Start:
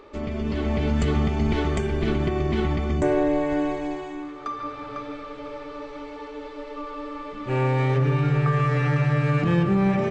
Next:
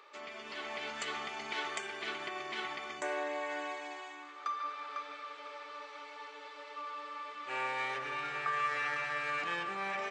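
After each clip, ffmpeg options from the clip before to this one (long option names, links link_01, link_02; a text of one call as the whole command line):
ffmpeg -i in.wav -af "highpass=1100,volume=-2.5dB" out.wav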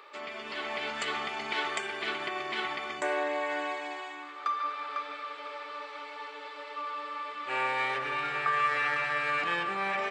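ffmpeg -i in.wav -af "equalizer=frequency=6200:width=2.8:gain=-7.5,volume=6dB" out.wav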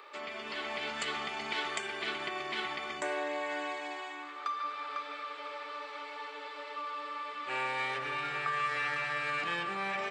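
ffmpeg -i in.wav -filter_complex "[0:a]acrossover=split=250|3000[link_01][link_02][link_03];[link_02]acompressor=threshold=-41dB:ratio=1.5[link_04];[link_01][link_04][link_03]amix=inputs=3:normalize=0" out.wav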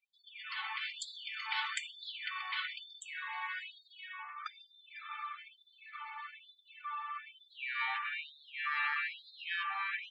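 ffmpeg -i in.wav -af "afftdn=noise_reduction=36:noise_floor=-45,afftfilt=real='re*gte(b*sr/1024,750*pow(3500/750,0.5+0.5*sin(2*PI*1.1*pts/sr)))':imag='im*gte(b*sr/1024,750*pow(3500/750,0.5+0.5*sin(2*PI*1.1*pts/sr)))':win_size=1024:overlap=0.75" out.wav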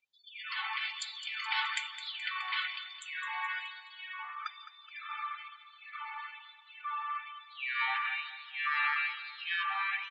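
ffmpeg -i in.wav -filter_complex "[0:a]aresample=16000,aresample=44100,asplit=2[link_01][link_02];[link_02]aecho=0:1:212|424|636|848:0.237|0.102|0.0438|0.0189[link_03];[link_01][link_03]amix=inputs=2:normalize=0,volume=3.5dB" out.wav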